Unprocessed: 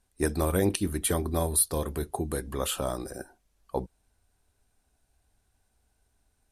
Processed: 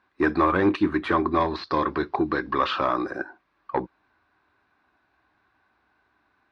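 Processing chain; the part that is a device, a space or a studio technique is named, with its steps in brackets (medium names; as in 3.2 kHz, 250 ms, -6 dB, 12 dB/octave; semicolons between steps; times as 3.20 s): overdrive pedal into a guitar cabinet (overdrive pedal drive 18 dB, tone 4.2 kHz, clips at -10.5 dBFS; cabinet simulation 82–3500 Hz, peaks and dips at 320 Hz +8 dB, 470 Hz -6 dB, 680 Hz -4 dB, 1.1 kHz +9 dB, 1.6 kHz +4 dB, 3.1 kHz -8 dB); 1.40–2.87 s: resonant high shelf 7.4 kHz -13.5 dB, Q 3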